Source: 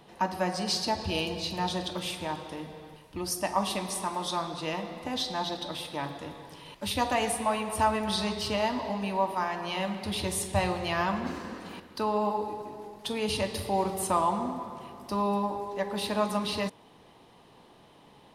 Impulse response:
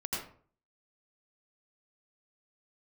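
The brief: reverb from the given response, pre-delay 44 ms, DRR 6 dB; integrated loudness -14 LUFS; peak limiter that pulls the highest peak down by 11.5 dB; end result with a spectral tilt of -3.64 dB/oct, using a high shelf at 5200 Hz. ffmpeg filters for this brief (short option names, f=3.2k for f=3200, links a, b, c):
-filter_complex "[0:a]highshelf=f=5.2k:g=4.5,alimiter=limit=-24dB:level=0:latency=1,asplit=2[a][b];[1:a]atrim=start_sample=2205,adelay=44[c];[b][c]afir=irnorm=-1:irlink=0,volume=-10dB[d];[a][d]amix=inputs=2:normalize=0,volume=19dB"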